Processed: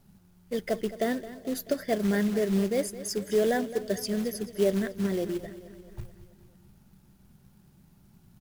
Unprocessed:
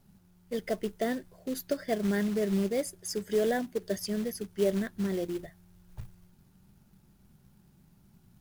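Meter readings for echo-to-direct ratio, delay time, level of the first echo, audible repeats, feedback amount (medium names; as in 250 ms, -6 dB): -13.0 dB, 217 ms, -15.0 dB, 5, 59%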